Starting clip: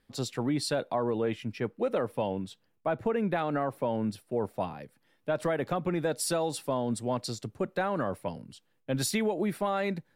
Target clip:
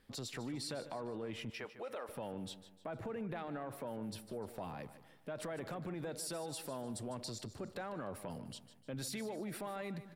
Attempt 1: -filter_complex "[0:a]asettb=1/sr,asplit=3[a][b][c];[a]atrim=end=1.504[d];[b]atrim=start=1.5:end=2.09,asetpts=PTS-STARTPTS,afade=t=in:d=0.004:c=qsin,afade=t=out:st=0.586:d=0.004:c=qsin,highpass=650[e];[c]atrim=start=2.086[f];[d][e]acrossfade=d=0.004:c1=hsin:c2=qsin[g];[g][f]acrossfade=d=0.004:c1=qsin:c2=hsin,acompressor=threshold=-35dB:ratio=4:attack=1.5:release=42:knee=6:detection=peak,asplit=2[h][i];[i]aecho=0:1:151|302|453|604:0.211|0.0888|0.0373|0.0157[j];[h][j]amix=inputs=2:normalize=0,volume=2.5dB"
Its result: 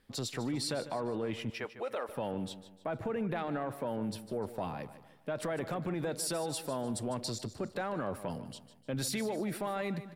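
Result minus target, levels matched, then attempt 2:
compressor: peak gain reduction -7.5 dB
-filter_complex "[0:a]asettb=1/sr,asplit=3[a][b][c];[a]atrim=end=1.504[d];[b]atrim=start=1.5:end=2.09,asetpts=PTS-STARTPTS,afade=t=in:d=0.004:c=qsin,afade=t=out:st=0.586:d=0.004:c=qsin,highpass=650[e];[c]atrim=start=2.086[f];[d][e]acrossfade=d=0.004:c1=hsin:c2=qsin[g];[g][f]acrossfade=d=0.004:c1=qsin:c2=hsin,acompressor=threshold=-45dB:ratio=4:attack=1.5:release=42:knee=6:detection=peak,asplit=2[h][i];[i]aecho=0:1:151|302|453|604:0.211|0.0888|0.0373|0.0157[j];[h][j]amix=inputs=2:normalize=0,volume=2.5dB"

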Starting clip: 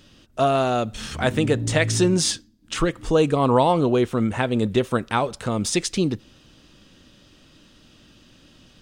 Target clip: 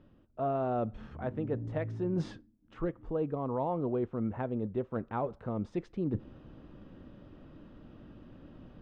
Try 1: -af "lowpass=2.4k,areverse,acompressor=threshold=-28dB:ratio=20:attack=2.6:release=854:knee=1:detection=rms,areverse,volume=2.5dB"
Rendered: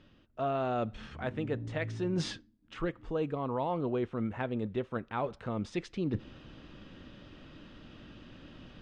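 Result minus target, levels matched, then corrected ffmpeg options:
2000 Hz band +8.0 dB
-af "lowpass=1k,areverse,acompressor=threshold=-28dB:ratio=20:attack=2.6:release=854:knee=1:detection=rms,areverse,volume=2.5dB"

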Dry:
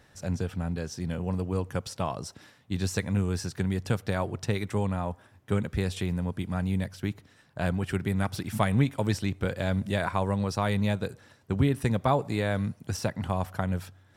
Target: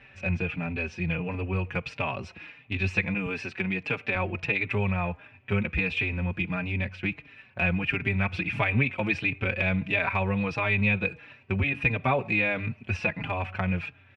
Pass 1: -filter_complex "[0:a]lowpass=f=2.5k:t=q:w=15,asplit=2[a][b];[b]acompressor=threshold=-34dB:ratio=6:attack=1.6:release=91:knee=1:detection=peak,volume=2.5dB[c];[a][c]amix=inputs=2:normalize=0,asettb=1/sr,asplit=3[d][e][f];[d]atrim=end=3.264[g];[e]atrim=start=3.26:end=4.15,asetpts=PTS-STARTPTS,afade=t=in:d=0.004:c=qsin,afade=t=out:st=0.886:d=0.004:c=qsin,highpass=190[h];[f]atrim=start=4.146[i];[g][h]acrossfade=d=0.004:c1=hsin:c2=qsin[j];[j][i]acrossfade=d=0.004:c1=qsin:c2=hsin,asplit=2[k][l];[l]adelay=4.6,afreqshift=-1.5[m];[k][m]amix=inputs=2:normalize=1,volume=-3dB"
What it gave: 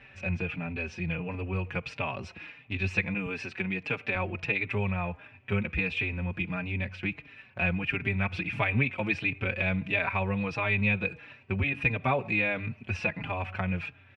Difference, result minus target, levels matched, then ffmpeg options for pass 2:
compressor: peak gain reduction +8 dB
-filter_complex "[0:a]lowpass=f=2.5k:t=q:w=15,asplit=2[a][b];[b]acompressor=threshold=-24.5dB:ratio=6:attack=1.6:release=91:knee=1:detection=peak,volume=2.5dB[c];[a][c]amix=inputs=2:normalize=0,asettb=1/sr,asplit=3[d][e][f];[d]atrim=end=3.264[g];[e]atrim=start=3.26:end=4.15,asetpts=PTS-STARTPTS,afade=t=in:d=0.004:c=qsin,afade=t=out:st=0.886:d=0.004:c=qsin,highpass=190[h];[f]atrim=start=4.146[i];[g][h]acrossfade=d=0.004:c1=hsin:c2=qsin[j];[j][i]acrossfade=d=0.004:c1=qsin:c2=hsin,asplit=2[k][l];[l]adelay=4.6,afreqshift=-1.5[m];[k][m]amix=inputs=2:normalize=1,volume=-3dB"

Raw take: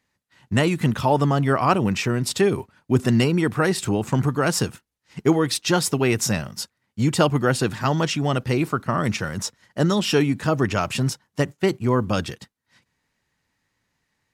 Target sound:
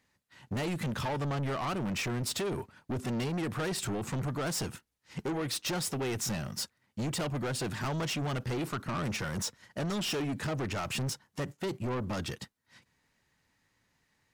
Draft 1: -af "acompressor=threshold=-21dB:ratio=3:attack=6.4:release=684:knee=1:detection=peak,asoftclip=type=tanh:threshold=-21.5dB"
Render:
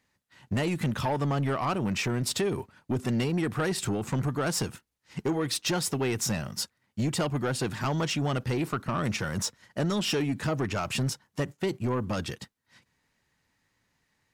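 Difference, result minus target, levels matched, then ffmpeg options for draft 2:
soft clip: distortion -7 dB
-af "acompressor=threshold=-21dB:ratio=3:attack=6.4:release=684:knee=1:detection=peak,asoftclip=type=tanh:threshold=-30dB"

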